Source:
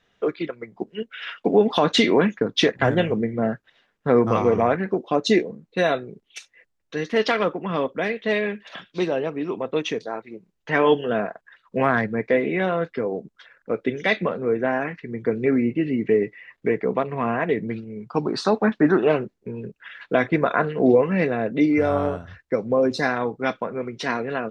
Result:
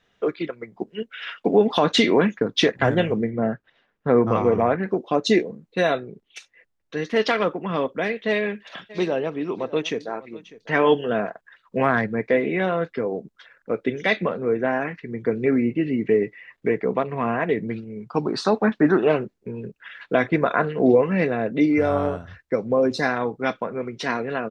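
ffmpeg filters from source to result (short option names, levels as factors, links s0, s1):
-filter_complex "[0:a]asettb=1/sr,asplit=3[s0][s1][s2];[s0]atrim=end=3.304[s3];[s1]atrim=start=3.3:end=4.83,asetpts=PTS-STARTPTS,afade=t=in:d=0.004:c=qsin,afade=t=out:st=1.526:d=0.004:c=qsin,lowpass=f=2400:p=1[s4];[s2]atrim=start=4.826[s5];[s3][s4]acrossfade=d=0.004:c1=hsin:c2=qsin[s6];[s6][s5]acrossfade=d=0.004:c1=qsin:c2=hsin,asettb=1/sr,asplit=3[s7][s8][s9];[s7]atrim=end=6.004[s10];[s8]atrim=start=6:end=7.03,asetpts=PTS-STARTPTS,afade=t=in:d=0.004:c=qsin,afade=t=out:st=1.026:d=0.004:c=qsin,highshelf=f=4900:g=-6[s11];[s9]atrim=start=7.026[s12];[s10][s11]acrossfade=d=0.004:c1=hsin:c2=qsin[s13];[s13][s12]acrossfade=d=0.004:c1=qsin:c2=hsin,asplit=3[s14][s15][s16];[s14]afade=t=out:st=8.89:d=0.02[s17];[s15]aecho=1:1:598:0.112,afade=t=in:st=8.89:d=0.02,afade=t=out:st=11.29:d=0.02[s18];[s16]afade=t=in:st=11.29:d=0.02[s19];[s17][s18][s19]amix=inputs=3:normalize=0"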